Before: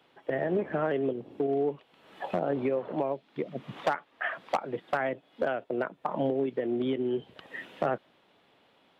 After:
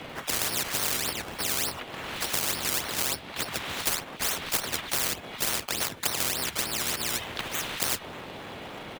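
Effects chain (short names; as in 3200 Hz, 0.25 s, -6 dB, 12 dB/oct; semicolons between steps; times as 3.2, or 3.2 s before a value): frequency shift -21 Hz; harmoniser -7 st -2 dB, -3 st -7 dB, +3 st -8 dB; in parallel at -7.5 dB: decimation with a swept rate 17×, swing 100% 3.4 Hz; on the sum: spectral compressor 10:1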